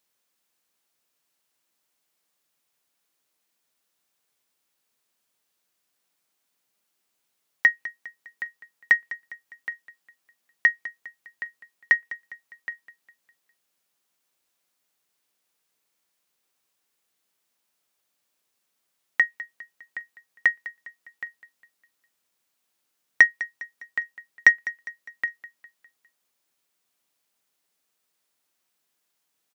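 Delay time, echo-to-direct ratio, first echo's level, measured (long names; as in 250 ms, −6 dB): 203 ms, −15.5 dB, −16.5 dB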